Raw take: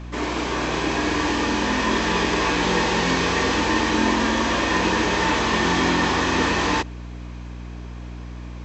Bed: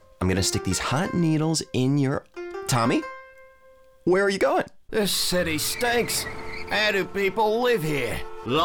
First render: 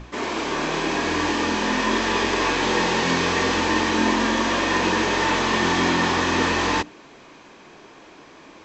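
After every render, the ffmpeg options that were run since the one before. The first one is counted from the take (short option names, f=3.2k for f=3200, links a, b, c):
-af "bandreject=f=60:t=h:w=6,bandreject=f=120:t=h:w=6,bandreject=f=180:t=h:w=6,bandreject=f=240:t=h:w=6,bandreject=f=300:t=h:w=6"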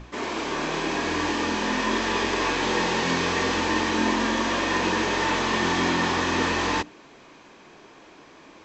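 -af "volume=-3dB"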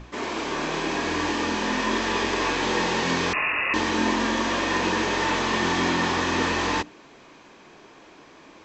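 -filter_complex "[0:a]asettb=1/sr,asplit=3[a][b][c];[a]atrim=end=3.334[d];[b]atrim=start=3.33:end=3.74,asetpts=PTS-STARTPTS,afade=t=in:d=0.004:c=qsin,afade=t=out:st=0.406:d=0.004:c=qsin,lowpass=f=2.5k:t=q:w=0.5098,lowpass=f=2.5k:t=q:w=0.6013,lowpass=f=2.5k:t=q:w=0.9,lowpass=f=2.5k:t=q:w=2.563,afreqshift=-2900[e];[c]atrim=start=3.736[f];[d][e]acrossfade=d=0.004:c1=hsin:c2=qsin[g];[g][f]acrossfade=d=0.004:c1=qsin:c2=hsin"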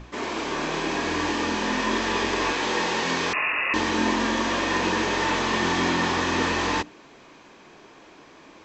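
-filter_complex "[0:a]asettb=1/sr,asplit=3[a][b][c];[a]atrim=end=2.524[d];[b]atrim=start=2.52:end=3.74,asetpts=PTS-STARTPTS,afade=t=in:d=0.004:c=qsin,afade=t=out:st=1.216:d=0.004:c=qsin,lowshelf=f=210:g=-8[e];[c]atrim=start=3.736[f];[d][e]acrossfade=d=0.004:c1=hsin:c2=qsin[g];[g][f]acrossfade=d=0.004:c1=qsin:c2=hsin"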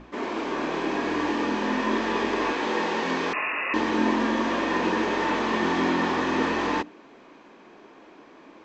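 -af "lowpass=f=1.9k:p=1,lowshelf=f=170:t=q:w=1.5:g=-7.5"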